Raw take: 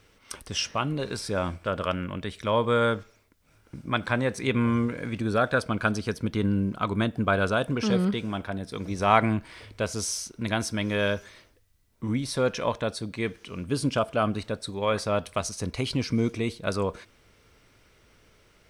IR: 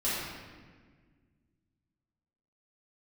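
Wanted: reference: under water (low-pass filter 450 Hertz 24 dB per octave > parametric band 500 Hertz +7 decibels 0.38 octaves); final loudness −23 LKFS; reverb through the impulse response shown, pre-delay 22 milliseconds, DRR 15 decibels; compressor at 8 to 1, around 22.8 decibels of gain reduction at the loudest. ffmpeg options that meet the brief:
-filter_complex "[0:a]acompressor=threshold=-39dB:ratio=8,asplit=2[link_01][link_02];[1:a]atrim=start_sample=2205,adelay=22[link_03];[link_02][link_03]afir=irnorm=-1:irlink=0,volume=-24dB[link_04];[link_01][link_04]amix=inputs=2:normalize=0,lowpass=frequency=450:width=0.5412,lowpass=frequency=450:width=1.3066,equalizer=frequency=500:width_type=o:width=0.38:gain=7,volume=21.5dB"

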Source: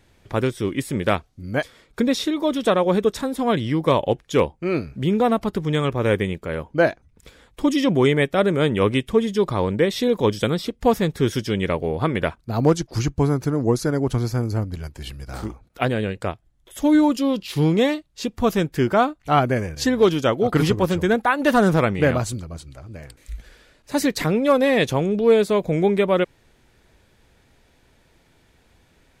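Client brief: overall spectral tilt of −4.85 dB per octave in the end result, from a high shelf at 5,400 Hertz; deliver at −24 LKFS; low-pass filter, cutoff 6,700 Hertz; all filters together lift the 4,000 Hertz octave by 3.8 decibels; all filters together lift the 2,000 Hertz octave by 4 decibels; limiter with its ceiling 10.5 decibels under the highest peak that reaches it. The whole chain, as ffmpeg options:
ffmpeg -i in.wav -af "lowpass=6700,equalizer=frequency=2000:width_type=o:gain=4.5,equalizer=frequency=4000:width_type=o:gain=5,highshelf=frequency=5400:gain=-4,volume=-0.5dB,alimiter=limit=-13dB:level=0:latency=1" out.wav

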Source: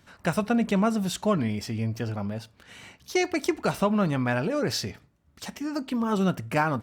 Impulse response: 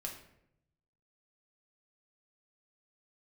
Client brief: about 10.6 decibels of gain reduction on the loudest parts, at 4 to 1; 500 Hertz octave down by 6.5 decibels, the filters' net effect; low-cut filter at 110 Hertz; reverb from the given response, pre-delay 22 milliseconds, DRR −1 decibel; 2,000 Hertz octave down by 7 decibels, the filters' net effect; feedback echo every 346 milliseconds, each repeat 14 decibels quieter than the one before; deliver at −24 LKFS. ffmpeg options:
-filter_complex "[0:a]highpass=110,equalizer=frequency=500:width_type=o:gain=-8.5,equalizer=frequency=2000:width_type=o:gain=-9,acompressor=threshold=-35dB:ratio=4,aecho=1:1:346|692:0.2|0.0399,asplit=2[link_01][link_02];[1:a]atrim=start_sample=2205,adelay=22[link_03];[link_02][link_03]afir=irnorm=-1:irlink=0,volume=2.5dB[link_04];[link_01][link_04]amix=inputs=2:normalize=0,volume=10.5dB"

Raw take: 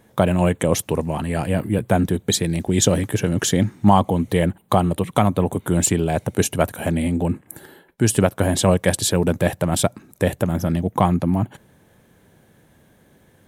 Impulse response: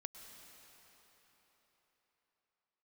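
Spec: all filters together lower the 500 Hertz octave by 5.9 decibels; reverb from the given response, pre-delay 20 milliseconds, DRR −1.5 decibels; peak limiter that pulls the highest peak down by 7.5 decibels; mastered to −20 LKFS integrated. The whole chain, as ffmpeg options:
-filter_complex "[0:a]equalizer=frequency=500:width_type=o:gain=-7.5,alimiter=limit=-10.5dB:level=0:latency=1,asplit=2[link_01][link_02];[1:a]atrim=start_sample=2205,adelay=20[link_03];[link_02][link_03]afir=irnorm=-1:irlink=0,volume=5.5dB[link_04];[link_01][link_04]amix=inputs=2:normalize=0"

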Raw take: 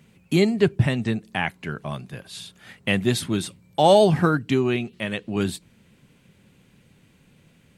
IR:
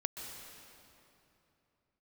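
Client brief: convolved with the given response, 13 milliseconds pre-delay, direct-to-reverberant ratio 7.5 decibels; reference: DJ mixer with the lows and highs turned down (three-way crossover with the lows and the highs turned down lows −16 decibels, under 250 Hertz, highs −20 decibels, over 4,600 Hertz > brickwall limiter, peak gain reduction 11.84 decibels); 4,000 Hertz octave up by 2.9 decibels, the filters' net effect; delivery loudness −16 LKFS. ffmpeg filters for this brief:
-filter_complex "[0:a]equalizer=frequency=4000:width_type=o:gain=6.5,asplit=2[link_01][link_02];[1:a]atrim=start_sample=2205,adelay=13[link_03];[link_02][link_03]afir=irnorm=-1:irlink=0,volume=-8.5dB[link_04];[link_01][link_04]amix=inputs=2:normalize=0,acrossover=split=250 4600:gain=0.158 1 0.1[link_05][link_06][link_07];[link_05][link_06][link_07]amix=inputs=3:normalize=0,volume=12.5dB,alimiter=limit=-3.5dB:level=0:latency=1"

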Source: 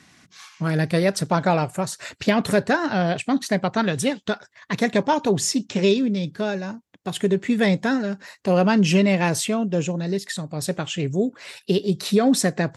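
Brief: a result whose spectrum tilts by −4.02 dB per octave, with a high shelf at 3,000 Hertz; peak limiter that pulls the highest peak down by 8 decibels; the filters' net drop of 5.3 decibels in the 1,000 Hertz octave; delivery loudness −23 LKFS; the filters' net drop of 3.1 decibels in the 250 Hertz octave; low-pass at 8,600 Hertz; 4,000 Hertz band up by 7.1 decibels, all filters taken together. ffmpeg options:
ffmpeg -i in.wav -af "lowpass=8600,equalizer=frequency=250:width_type=o:gain=-4,equalizer=frequency=1000:width_type=o:gain=-8,highshelf=frequency=3000:gain=4,equalizer=frequency=4000:width_type=o:gain=6.5,volume=1.5dB,alimiter=limit=-11.5dB:level=0:latency=1" out.wav

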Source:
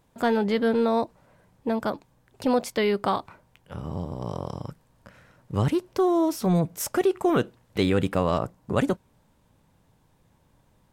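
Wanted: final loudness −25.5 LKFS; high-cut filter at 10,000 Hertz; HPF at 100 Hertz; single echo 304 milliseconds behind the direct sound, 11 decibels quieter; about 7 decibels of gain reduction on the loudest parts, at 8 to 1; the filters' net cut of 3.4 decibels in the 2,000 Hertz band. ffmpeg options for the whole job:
ffmpeg -i in.wav -af "highpass=100,lowpass=10000,equalizer=frequency=2000:width_type=o:gain=-4.5,acompressor=threshold=-25dB:ratio=8,aecho=1:1:304:0.282,volume=6dB" out.wav

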